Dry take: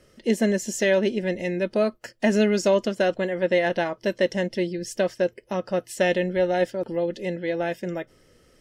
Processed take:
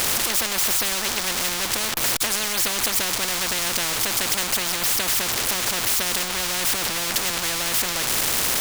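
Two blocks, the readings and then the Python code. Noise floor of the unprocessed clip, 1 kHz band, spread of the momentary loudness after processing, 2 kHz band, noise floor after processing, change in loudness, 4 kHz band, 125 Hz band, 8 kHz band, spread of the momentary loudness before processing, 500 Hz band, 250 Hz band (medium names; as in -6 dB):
-59 dBFS, +3.5 dB, 3 LU, +4.5 dB, -27 dBFS, +4.0 dB, +14.5 dB, -5.5 dB, +18.0 dB, 7 LU, -11.5 dB, -10.0 dB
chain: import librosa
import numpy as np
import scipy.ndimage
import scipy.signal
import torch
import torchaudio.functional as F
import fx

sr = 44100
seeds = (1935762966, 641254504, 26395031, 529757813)

y = x + 0.5 * 10.0 ** (-29.0 / 20.0) * np.sign(x)
y = fx.spectral_comp(y, sr, ratio=10.0)
y = y * 10.0 ** (2.0 / 20.0)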